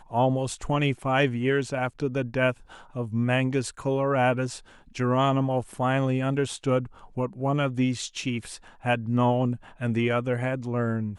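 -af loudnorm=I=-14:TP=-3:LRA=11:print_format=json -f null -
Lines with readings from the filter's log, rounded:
"input_i" : "-26.4",
"input_tp" : "-10.4",
"input_lra" : "1.5",
"input_thresh" : "-36.7",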